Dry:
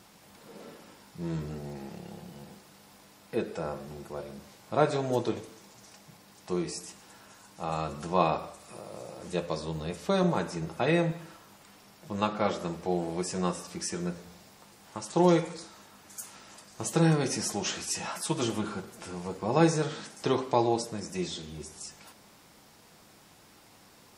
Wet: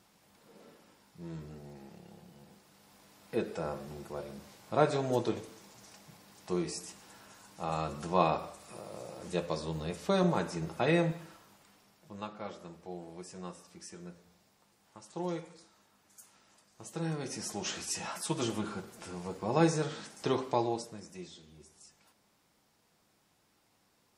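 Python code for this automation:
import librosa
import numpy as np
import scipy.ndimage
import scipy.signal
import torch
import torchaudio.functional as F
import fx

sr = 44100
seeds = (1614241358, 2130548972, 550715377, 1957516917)

y = fx.gain(x, sr, db=fx.line((2.41, -9.5), (3.37, -2.0), (11.07, -2.0), (12.36, -14.0), (16.89, -14.0), (17.77, -3.5), (20.47, -3.5), (21.33, -14.5)))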